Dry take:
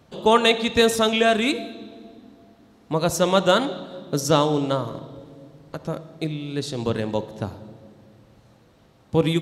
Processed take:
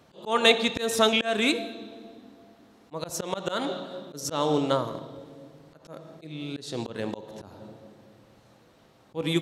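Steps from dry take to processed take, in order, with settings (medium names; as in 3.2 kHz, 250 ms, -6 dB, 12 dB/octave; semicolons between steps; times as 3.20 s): bass shelf 160 Hz -10 dB; slow attack 217 ms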